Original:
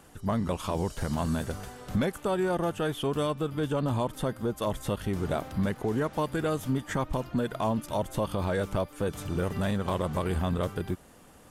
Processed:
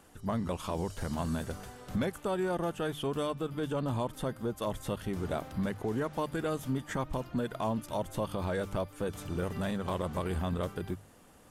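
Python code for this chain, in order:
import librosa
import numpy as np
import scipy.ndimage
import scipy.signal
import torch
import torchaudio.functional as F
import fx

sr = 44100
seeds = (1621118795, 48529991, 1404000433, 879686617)

y = fx.hum_notches(x, sr, base_hz=50, count=3)
y = y * 10.0 ** (-4.0 / 20.0)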